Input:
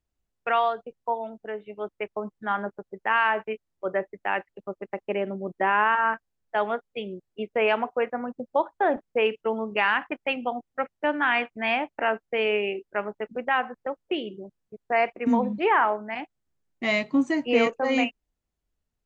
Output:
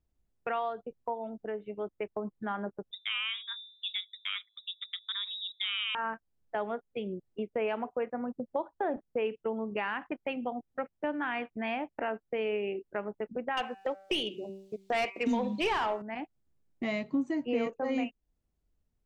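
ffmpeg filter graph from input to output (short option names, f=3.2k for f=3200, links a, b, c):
-filter_complex "[0:a]asettb=1/sr,asplit=3[a][b][c];[a]atrim=end=2.914[d];[b]atrim=start=2.91:end=5.95,asetpts=PTS-STARTPTS,afade=t=in:d=0.004:c=qsin,afade=t=out:st=3.036:d=0.004:c=qsin,bandreject=f=107.8:t=h:w=4,bandreject=f=215.6:t=h:w=4,bandreject=f=323.4:t=h:w=4,bandreject=f=431.2:t=h:w=4,bandreject=f=539:t=h:w=4,bandreject=f=646.8:t=h:w=4,lowpass=f=3.4k:t=q:w=0.5098,lowpass=f=3.4k:t=q:w=0.6013,lowpass=f=3.4k:t=q:w=0.9,lowpass=f=3.4k:t=q:w=2.563,afreqshift=-4000[e];[c]atrim=start=5.946[f];[d][e]acrossfade=d=0.004:c1=hsin:c2=qsin[g];[g][f]acrossfade=d=0.004:c1=qsin:c2=hsin,asettb=1/sr,asplit=3[h][i][j];[h]atrim=end=13.574[k];[i]atrim=start=13.57:end=16.02,asetpts=PTS-STARTPTS,afade=t=in:d=0.004:c=qsin,afade=t=out:st=2.446:d=0.004:c=qsin,highshelf=f=2.4k:t=q:w=1.5:g=13.5,bandreject=f=193.6:t=h:w=4,bandreject=f=387.2:t=h:w=4,bandreject=f=580.8:t=h:w=4,bandreject=f=774.4:t=h:w=4,bandreject=f=968:t=h:w=4,bandreject=f=1.1616k:t=h:w=4,bandreject=f=1.3552k:t=h:w=4,bandreject=f=1.5488k:t=h:w=4,bandreject=f=1.7424k:t=h:w=4,bandreject=f=1.936k:t=h:w=4,bandreject=f=2.1296k:t=h:w=4,bandreject=f=2.3232k:t=h:w=4,bandreject=f=2.5168k:t=h:w=4,bandreject=f=2.7104k:t=h:w=4,bandreject=f=2.904k:t=h:w=4,asplit=2[l][m];[m]highpass=f=720:p=1,volume=16dB,asoftclip=type=tanh:threshold=-8.5dB[n];[l][n]amix=inputs=2:normalize=0,lowpass=f=5.7k:p=1,volume=-6dB[o];[j]atrim=start=16.016[p];[k][o]acrossfade=d=0.004:c1=hsin:c2=qsin[q];[q][p]acrossfade=d=0.004:c1=qsin:c2=hsin,tiltshelf=f=650:g=5,acompressor=threshold=-36dB:ratio=2"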